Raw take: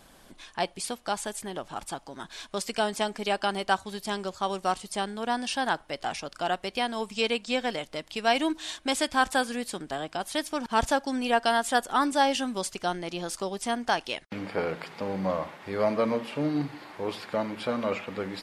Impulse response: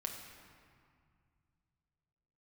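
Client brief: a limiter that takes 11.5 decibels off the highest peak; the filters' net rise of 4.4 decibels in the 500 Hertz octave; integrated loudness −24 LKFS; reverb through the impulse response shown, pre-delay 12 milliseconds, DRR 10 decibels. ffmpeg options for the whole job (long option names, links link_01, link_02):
-filter_complex "[0:a]equalizer=frequency=500:width_type=o:gain=5.5,alimiter=limit=-19.5dB:level=0:latency=1,asplit=2[link_01][link_02];[1:a]atrim=start_sample=2205,adelay=12[link_03];[link_02][link_03]afir=irnorm=-1:irlink=0,volume=-9.5dB[link_04];[link_01][link_04]amix=inputs=2:normalize=0,volume=7dB"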